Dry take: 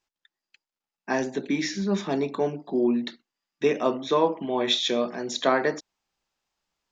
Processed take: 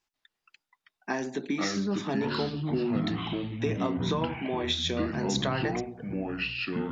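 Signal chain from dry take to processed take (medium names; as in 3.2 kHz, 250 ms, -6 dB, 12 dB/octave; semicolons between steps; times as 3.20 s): compression 5:1, threshold -26 dBFS, peak gain reduction 10 dB; ever faster or slower copies 140 ms, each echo -5 st, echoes 3; peaking EQ 540 Hz -4.5 dB 0.55 oct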